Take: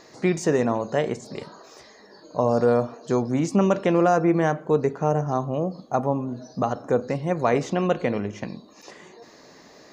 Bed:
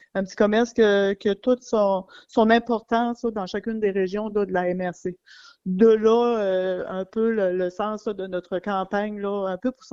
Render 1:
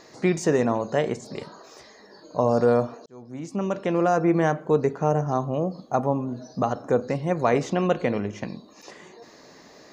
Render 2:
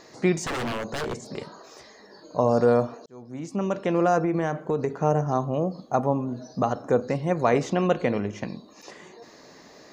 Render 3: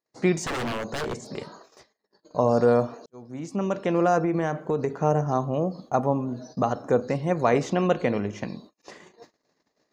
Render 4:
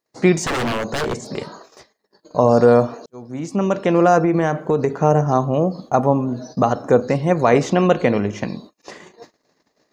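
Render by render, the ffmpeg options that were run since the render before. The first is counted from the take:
-filter_complex "[0:a]asplit=2[s0][s1];[s0]atrim=end=3.06,asetpts=PTS-STARTPTS,afade=t=out:st=3.056:d=0.004:c=hsin[s2];[s1]atrim=start=3.06,asetpts=PTS-STARTPTS,afade=t=in:d=1.32[s3];[s2][s3]concat=n=2:v=0:a=1"
-filter_complex "[0:a]asettb=1/sr,asplit=3[s0][s1][s2];[s0]atrim=end=0.444[s3];[s1]atrim=start=0.44:end=1.36,asetpts=PTS-STARTPTS,afade=t=in:d=0.004:c=qsin,afade=t=out:st=0.916:d=0.004:c=qsin,aeval=exprs='0.0631*(abs(mod(val(0)/0.0631+3,4)-2)-1)':c=same[s4];[s2]atrim=start=1.356[s5];[s3][s4]acrossfade=d=0.004:c1=hsin:c2=qsin[s6];[s6][s5]acrossfade=d=0.004:c1=qsin:c2=hsin,asettb=1/sr,asplit=3[s7][s8][s9];[s7]atrim=end=4.234[s10];[s8]atrim=start=4.23:end=4.99,asetpts=PTS-STARTPTS,afade=t=in:d=0.004:c=qsin,afade=t=out:st=0.756:d=0.004:c=qsin,acompressor=threshold=0.1:ratio=6:attack=3.2:release=140:knee=1:detection=peak[s11];[s9]atrim=start=4.986[s12];[s10][s11]acrossfade=d=0.004:c1=hsin:c2=qsin[s13];[s13][s12]acrossfade=d=0.004:c1=qsin:c2=hsin"
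-af "agate=range=0.00794:threshold=0.00562:ratio=16:detection=peak"
-af "volume=2.37,alimiter=limit=0.794:level=0:latency=1"

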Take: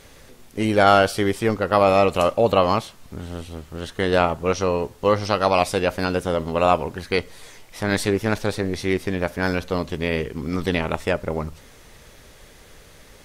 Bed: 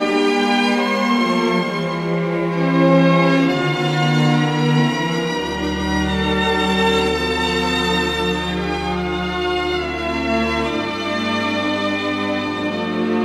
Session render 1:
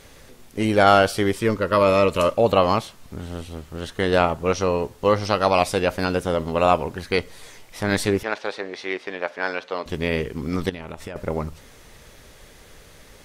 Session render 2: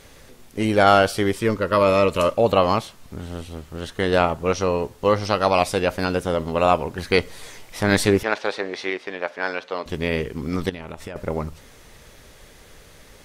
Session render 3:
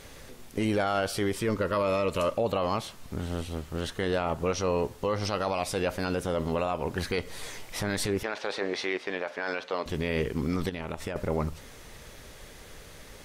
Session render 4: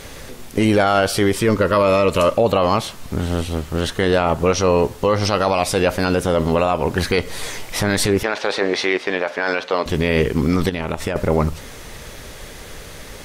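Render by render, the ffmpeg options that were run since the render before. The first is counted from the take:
-filter_complex "[0:a]asettb=1/sr,asplit=3[s0][s1][s2];[s0]atrim=end=1.354[s3];[s1]atrim=start=1.35:end=2.38,asetpts=PTS-STARTPTS,afade=t=in:d=0.004:c=qsin,afade=t=out:st=1.026:d=0.004:c=qsin,asuperstop=centerf=760:order=12:qfactor=4.2[s4];[s2]atrim=start=2.376[s5];[s3][s4]acrossfade=d=0.004:c1=hsin:c2=qsin[s6];[s6][s5]acrossfade=d=0.004:c1=qsin:c2=hsin,asettb=1/sr,asplit=3[s7][s8][s9];[s7]atrim=end=8.234[s10];[s8]atrim=start=8.23:end=9.86,asetpts=PTS-STARTPTS,afade=t=in:d=0.004:c=qsin,afade=t=out:st=1.626:d=0.004:c=qsin,highpass=520,lowpass=4000[s11];[s9]atrim=start=9.856[s12];[s10][s11]acrossfade=d=0.004:c1=hsin:c2=qsin[s13];[s13][s12]acrossfade=d=0.004:c1=qsin:c2=hsin,asettb=1/sr,asplit=3[s14][s15][s16];[s14]atrim=end=10.694[s17];[s15]atrim=start=10.69:end=11.16,asetpts=PTS-STARTPTS,afade=t=in:d=0.004:c=qsin,afade=t=out:st=0.466:d=0.004:c=qsin,acompressor=threshold=0.0355:ratio=16:attack=3.2:release=140:knee=1:detection=peak[s18];[s16]atrim=start=11.156[s19];[s17][s18]acrossfade=d=0.004:c1=hsin:c2=qsin[s20];[s20][s19]acrossfade=d=0.004:c1=qsin:c2=hsin"
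-filter_complex "[0:a]asplit=3[s0][s1][s2];[s0]atrim=end=6.982[s3];[s1]atrim=start=6.978:end=8.902,asetpts=PTS-STARTPTS,volume=1.5[s4];[s2]atrim=start=8.898[s5];[s3][s4]acrossfade=d=0.004:c1=hsin:c2=hsin[s6];[s6][s5]acrossfade=d=0.004:c1=hsin:c2=hsin"
-af "acompressor=threshold=0.1:ratio=6,alimiter=limit=0.126:level=0:latency=1:release=16"
-af "volume=3.76"

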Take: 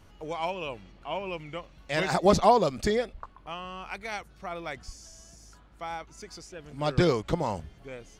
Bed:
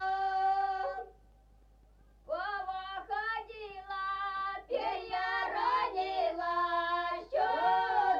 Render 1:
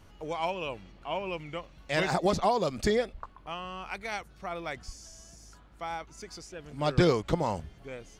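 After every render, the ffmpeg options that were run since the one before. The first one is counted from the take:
-filter_complex "[0:a]asettb=1/sr,asplit=3[s0][s1][s2];[s0]atrim=end=2.074[s3];[s1]atrim=start=2.07:end=2.78,asetpts=PTS-STARTPTS,afade=t=in:d=0.004:c=qsin,afade=t=out:st=0.706:d=0.004:c=qsin,acrossover=split=1200|2600[s4][s5][s6];[s4]acompressor=threshold=0.0631:ratio=4[s7];[s5]acompressor=threshold=0.0126:ratio=4[s8];[s6]acompressor=threshold=0.0112:ratio=4[s9];[s7][s8][s9]amix=inputs=3:normalize=0[s10];[s2]atrim=start=2.776[s11];[s3][s10]acrossfade=d=0.004:c1=hsin:c2=qsin[s12];[s12][s11]acrossfade=d=0.004:c1=qsin:c2=hsin"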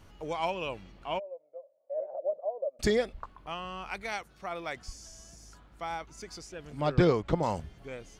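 -filter_complex "[0:a]asplit=3[s0][s1][s2];[s0]afade=t=out:st=1.18:d=0.02[s3];[s1]asuperpass=centerf=580:order=4:qfactor=4.9,afade=t=in:st=1.18:d=0.02,afade=t=out:st=2.79:d=0.02[s4];[s2]afade=t=in:st=2.79:d=0.02[s5];[s3][s4][s5]amix=inputs=3:normalize=0,asettb=1/sr,asplit=3[s6][s7][s8];[s6]atrim=end=4.124[s9];[s7]atrim=start=4.12:end=4.87,asetpts=PTS-STARTPTS,afade=t=in:d=0.004:c=qsin,afade=t=out:st=0.746:d=0.004:c=qsin,lowshelf=f=160:g=-8[s10];[s8]atrim=start=4.866[s11];[s9][s10]acrossfade=d=0.004:c1=hsin:c2=qsin[s12];[s12][s11]acrossfade=d=0.004:c1=qsin:c2=hsin,asettb=1/sr,asplit=3[s13][s14][s15];[s13]atrim=end=6.814[s16];[s14]atrim=start=6.81:end=7.43,asetpts=PTS-STARTPTS,afade=t=in:d=0.004:c=qsin,afade=t=out:st=0.616:d=0.004:c=qsin,lowpass=f=2300:p=1[s17];[s15]atrim=start=7.426[s18];[s16][s17]acrossfade=d=0.004:c1=hsin:c2=qsin[s19];[s19][s18]acrossfade=d=0.004:c1=qsin:c2=hsin"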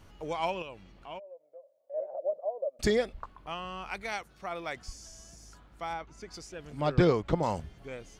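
-filter_complex "[0:a]asettb=1/sr,asplit=3[s0][s1][s2];[s0]atrim=end=0.624[s3];[s1]atrim=start=0.62:end=1.94,asetpts=PTS-STARTPTS,afade=t=in:d=0.004:c=qsin,afade=t=out:st=1.316:d=0.004:c=qsin,acompressor=threshold=0.002:ratio=1.5:attack=3.2:release=140:knee=1:detection=peak[s4];[s2]atrim=start=1.936[s5];[s3][s4]acrossfade=d=0.004:c1=hsin:c2=qsin[s6];[s6][s5]acrossfade=d=0.004:c1=qsin:c2=hsin,asettb=1/sr,asplit=3[s7][s8][s9];[s7]atrim=end=5.934[s10];[s8]atrim=start=5.93:end=6.34,asetpts=PTS-STARTPTS,afade=t=in:d=0.004:c=qsin,afade=t=out:st=0.406:d=0.004:c=qsin,lowpass=f=2900:p=1[s11];[s9]atrim=start=6.336[s12];[s10][s11]acrossfade=d=0.004:c1=hsin:c2=qsin[s13];[s13][s12]acrossfade=d=0.004:c1=qsin:c2=hsin"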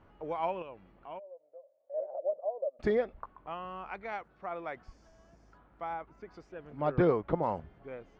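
-af "lowpass=1500,lowshelf=f=170:g=-9.5"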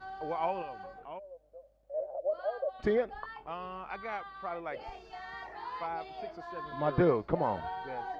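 -filter_complex "[1:a]volume=0.282[s0];[0:a][s0]amix=inputs=2:normalize=0"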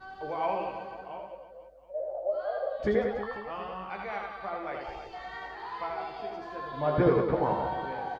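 -filter_complex "[0:a]asplit=2[s0][s1];[s1]adelay=15,volume=0.531[s2];[s0][s2]amix=inputs=2:normalize=0,aecho=1:1:80|184|319.2|495|723.4:0.631|0.398|0.251|0.158|0.1"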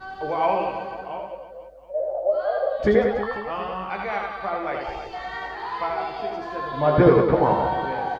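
-af "volume=2.66"

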